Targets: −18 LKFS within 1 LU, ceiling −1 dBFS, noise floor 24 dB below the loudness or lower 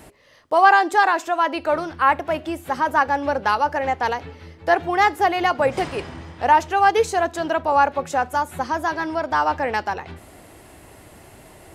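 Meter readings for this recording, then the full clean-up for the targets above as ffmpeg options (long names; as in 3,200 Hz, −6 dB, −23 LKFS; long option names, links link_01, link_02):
integrated loudness −20.5 LKFS; sample peak −2.5 dBFS; target loudness −18.0 LKFS
→ -af "volume=2.5dB,alimiter=limit=-1dB:level=0:latency=1"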